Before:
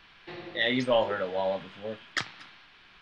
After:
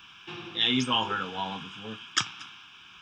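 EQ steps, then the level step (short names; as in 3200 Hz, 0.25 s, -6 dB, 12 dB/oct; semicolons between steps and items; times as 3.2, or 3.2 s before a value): HPF 75 Hz; high shelf 2700 Hz +9.5 dB; fixed phaser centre 2900 Hz, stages 8; +4.0 dB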